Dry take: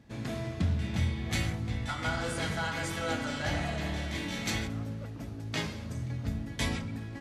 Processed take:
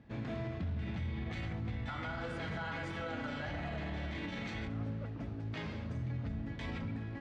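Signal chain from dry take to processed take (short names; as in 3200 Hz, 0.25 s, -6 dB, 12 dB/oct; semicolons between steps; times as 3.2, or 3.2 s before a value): limiter -29.5 dBFS, peak gain reduction 11.5 dB; LPF 2900 Hz 12 dB/oct; gain -1 dB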